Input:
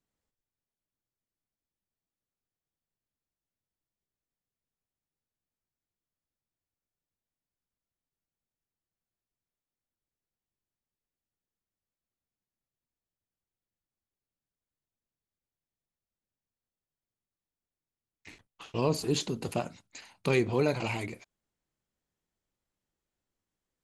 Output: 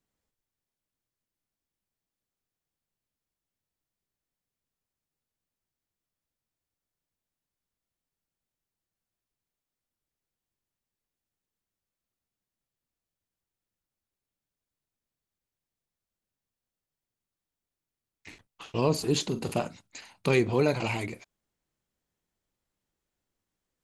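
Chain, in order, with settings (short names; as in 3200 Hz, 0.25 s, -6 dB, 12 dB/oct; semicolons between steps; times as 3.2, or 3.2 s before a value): 19.27–19.68 doubler 44 ms -11 dB; gain +2.5 dB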